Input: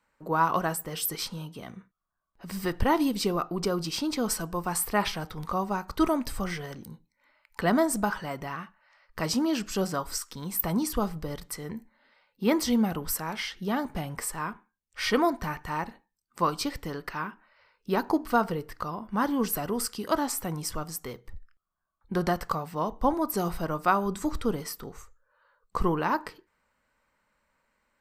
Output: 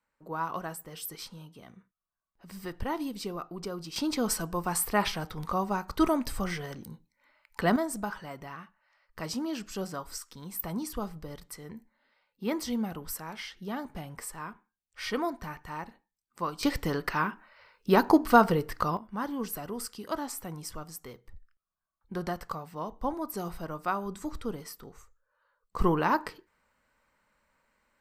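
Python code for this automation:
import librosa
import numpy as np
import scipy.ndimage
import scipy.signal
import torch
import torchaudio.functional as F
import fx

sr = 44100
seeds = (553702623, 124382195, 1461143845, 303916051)

y = fx.gain(x, sr, db=fx.steps((0.0, -9.0), (3.96, -0.5), (7.76, -7.0), (16.63, 5.0), (18.97, -7.0), (25.79, 1.0)))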